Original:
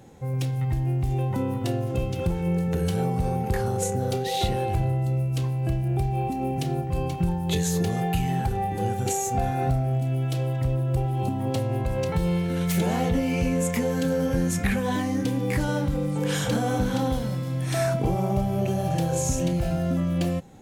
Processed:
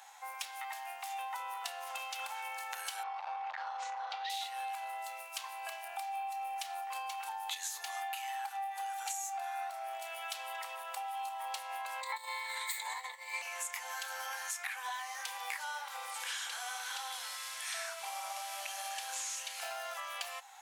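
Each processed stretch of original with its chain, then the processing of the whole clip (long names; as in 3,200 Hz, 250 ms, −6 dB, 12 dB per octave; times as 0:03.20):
0:03.03–0:04.30: low-pass filter 4,200 Hz 24 dB per octave + saturating transformer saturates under 340 Hz
0:12.01–0:13.42: EQ curve with evenly spaced ripples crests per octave 1, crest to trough 17 dB + compressor whose output falls as the input rises −23 dBFS, ratio −0.5
0:16.14–0:19.63: linear delta modulator 64 kbit/s, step −38 dBFS + parametric band 810 Hz −8 dB 1.4 octaves
whole clip: Butterworth high-pass 780 Hz 48 dB per octave; downward compressor 6 to 1, threshold −42 dBFS; level +4.5 dB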